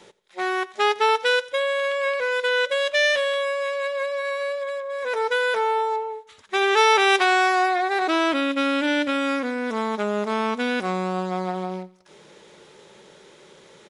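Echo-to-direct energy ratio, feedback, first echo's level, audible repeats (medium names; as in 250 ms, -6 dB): -19.0 dB, 42%, -20.0 dB, 2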